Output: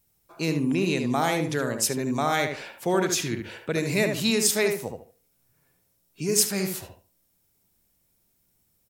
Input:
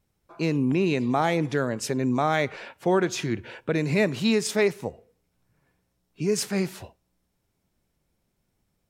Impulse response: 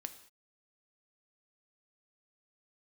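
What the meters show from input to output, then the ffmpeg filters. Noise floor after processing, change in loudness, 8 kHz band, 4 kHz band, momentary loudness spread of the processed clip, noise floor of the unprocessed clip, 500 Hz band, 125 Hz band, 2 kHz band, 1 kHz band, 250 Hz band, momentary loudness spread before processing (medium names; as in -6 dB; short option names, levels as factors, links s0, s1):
-70 dBFS, 0.0 dB, +9.0 dB, +4.5 dB, 11 LU, -75 dBFS, -1.5 dB, -2.0 dB, +1.0 dB, -0.5 dB, -1.5 dB, 8 LU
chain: -filter_complex "[0:a]aemphasis=mode=production:type=75fm,asplit=2[s0][s1];[s1]adelay=74,lowpass=f=2100:p=1,volume=0.596,asplit=2[s2][s3];[s3]adelay=74,lowpass=f=2100:p=1,volume=0.25,asplit=2[s4][s5];[s5]adelay=74,lowpass=f=2100:p=1,volume=0.25[s6];[s2][s4][s6]amix=inputs=3:normalize=0[s7];[s0][s7]amix=inputs=2:normalize=0,volume=0.794"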